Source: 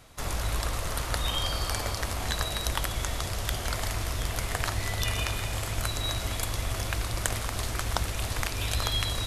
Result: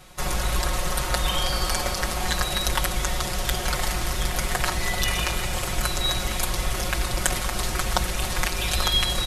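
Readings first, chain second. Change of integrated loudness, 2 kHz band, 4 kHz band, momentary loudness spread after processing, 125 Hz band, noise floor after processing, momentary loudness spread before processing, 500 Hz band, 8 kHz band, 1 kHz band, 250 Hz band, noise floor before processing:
+5.5 dB, +6.0 dB, +6.0 dB, 3 LU, +1.5 dB, -29 dBFS, 3 LU, +5.5 dB, +6.0 dB, +6.5 dB, +6.5 dB, -34 dBFS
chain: comb 5.5 ms, depth 89%; gain +3.5 dB

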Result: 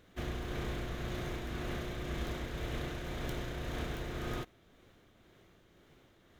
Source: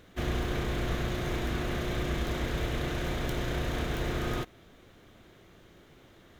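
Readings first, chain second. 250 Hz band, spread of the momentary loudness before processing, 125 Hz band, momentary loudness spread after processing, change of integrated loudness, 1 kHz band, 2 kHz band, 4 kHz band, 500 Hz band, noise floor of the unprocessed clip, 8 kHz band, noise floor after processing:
-7.0 dB, 1 LU, -7.0 dB, 1 LU, -7.0 dB, -7.0 dB, -7.0 dB, -7.0 dB, -7.0 dB, -57 dBFS, -7.0 dB, -65 dBFS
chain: tremolo triangle 1.9 Hz, depth 35%; gain -5.5 dB

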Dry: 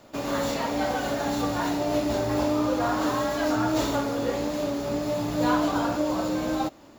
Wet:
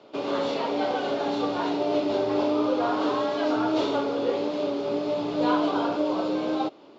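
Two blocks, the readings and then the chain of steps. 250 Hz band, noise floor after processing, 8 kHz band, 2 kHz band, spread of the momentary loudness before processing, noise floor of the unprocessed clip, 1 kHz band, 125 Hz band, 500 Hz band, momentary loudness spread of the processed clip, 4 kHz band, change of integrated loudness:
-0.5 dB, -50 dBFS, under -10 dB, -3.0 dB, 4 LU, -50 dBFS, 0.0 dB, -9.0 dB, +2.0 dB, 4 LU, 0.0 dB, 0.0 dB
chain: speaker cabinet 210–4600 Hz, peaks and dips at 230 Hz -3 dB, 410 Hz +9 dB, 1800 Hz -8 dB, 3200 Hz +3 dB

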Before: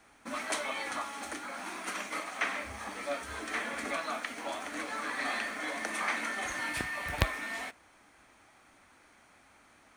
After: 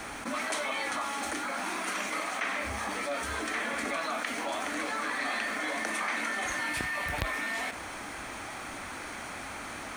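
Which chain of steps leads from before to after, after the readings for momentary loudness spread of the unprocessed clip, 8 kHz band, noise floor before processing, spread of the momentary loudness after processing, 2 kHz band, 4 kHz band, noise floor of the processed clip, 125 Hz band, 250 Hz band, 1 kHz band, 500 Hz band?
7 LU, +4.5 dB, -62 dBFS, 8 LU, +3.5 dB, +3.5 dB, -41 dBFS, -1.5 dB, +4.5 dB, +4.0 dB, +3.5 dB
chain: fast leveller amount 70%; gain -6 dB

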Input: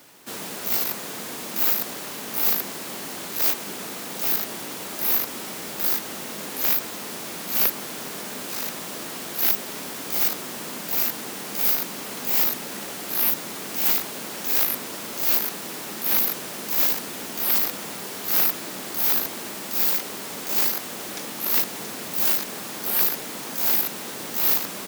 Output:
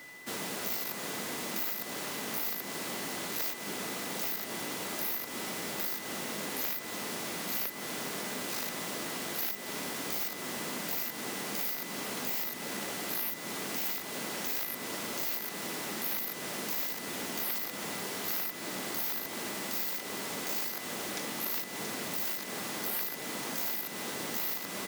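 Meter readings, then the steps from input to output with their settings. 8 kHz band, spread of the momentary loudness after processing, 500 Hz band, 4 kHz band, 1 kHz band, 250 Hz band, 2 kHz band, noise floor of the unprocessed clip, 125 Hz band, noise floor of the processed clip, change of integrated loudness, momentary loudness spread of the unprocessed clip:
-7.0 dB, 4 LU, -5.0 dB, -6.5 dB, -5.5 dB, -4.5 dB, -4.5 dB, -35 dBFS, -4.0 dB, -41 dBFS, -10.5 dB, 12 LU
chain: high shelf 10000 Hz -4 dB; compressor 6:1, threshold -29 dBFS, peak gain reduction 10.5 dB; whine 2000 Hz -46 dBFS; gain -2 dB

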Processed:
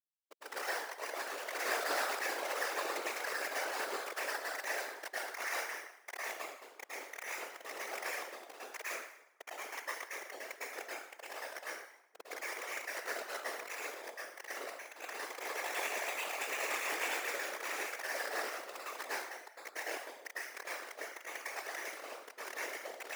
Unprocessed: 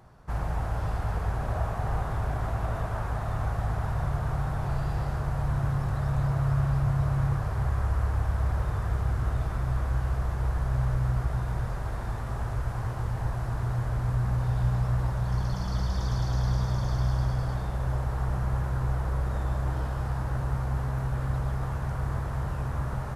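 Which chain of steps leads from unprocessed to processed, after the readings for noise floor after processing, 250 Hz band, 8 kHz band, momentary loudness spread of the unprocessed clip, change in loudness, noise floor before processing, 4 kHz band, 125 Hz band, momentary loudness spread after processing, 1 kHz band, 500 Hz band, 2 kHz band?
-60 dBFS, -19.0 dB, n/a, 5 LU, -10.0 dB, -33 dBFS, +4.5 dB, under -40 dB, 11 LU, -5.5 dB, -3.5 dB, +4.5 dB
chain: sine-wave speech; LPF 2600 Hz 24 dB/oct; spectral gate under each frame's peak -20 dB weak; Schmitt trigger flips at -39 dBFS; brick-wall FIR high-pass 400 Hz; plate-style reverb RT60 0.8 s, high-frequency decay 0.85×, pre-delay 95 ms, DRR -8 dB; whisperiser; gain +9.5 dB

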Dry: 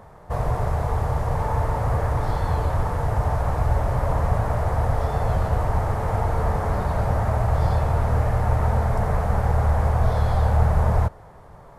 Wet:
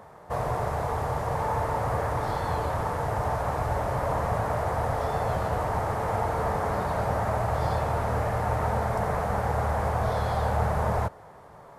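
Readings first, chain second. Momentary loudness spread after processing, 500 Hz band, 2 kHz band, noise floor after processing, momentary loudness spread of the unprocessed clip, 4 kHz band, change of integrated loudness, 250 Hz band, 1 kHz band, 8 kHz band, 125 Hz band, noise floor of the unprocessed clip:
2 LU, -0.5 dB, 0.0 dB, -49 dBFS, 4 LU, 0.0 dB, -4.5 dB, -4.0 dB, -0.5 dB, n/a, -8.5 dB, -46 dBFS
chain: HPF 230 Hz 6 dB/oct

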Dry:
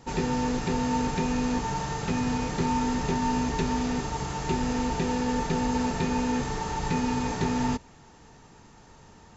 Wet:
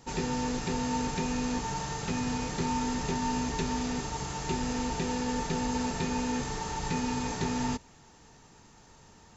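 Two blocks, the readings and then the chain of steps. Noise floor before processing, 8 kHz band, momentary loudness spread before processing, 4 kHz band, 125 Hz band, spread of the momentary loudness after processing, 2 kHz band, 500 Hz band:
-53 dBFS, n/a, 4 LU, -0.5 dB, -4.5 dB, 3 LU, -3.0 dB, -4.5 dB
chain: high shelf 3600 Hz +7 dB; gain -4.5 dB

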